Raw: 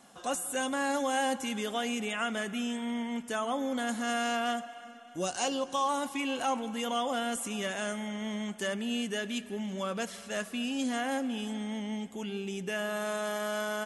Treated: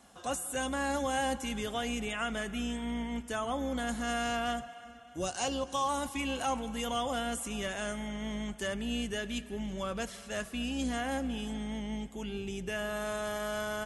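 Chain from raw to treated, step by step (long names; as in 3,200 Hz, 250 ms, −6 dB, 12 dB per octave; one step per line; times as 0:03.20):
sub-octave generator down 2 octaves, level −6 dB
0:05.67–0:07.22: parametric band 11,000 Hz +3.5 dB 1.9 octaves
level −2 dB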